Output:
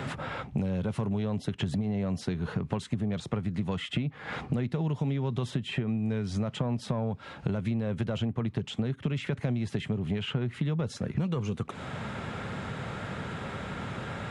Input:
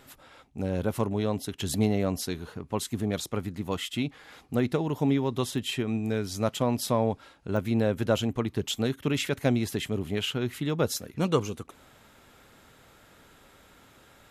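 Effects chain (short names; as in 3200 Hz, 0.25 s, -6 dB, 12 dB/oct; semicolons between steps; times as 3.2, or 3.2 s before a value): in parallel at -9.5 dB: one-sided clip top -26.5 dBFS; on the sum: HPF 150 Hz 12 dB/oct; bell 290 Hz -8 dB 0.57 oct; limiter -17.5 dBFS, peak gain reduction 7.5 dB; tone controls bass +14 dB, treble -13 dB; compressor 12:1, threshold -34 dBFS, peak gain reduction 19 dB; downsampling 22050 Hz; three-band squash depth 70%; gain +7.5 dB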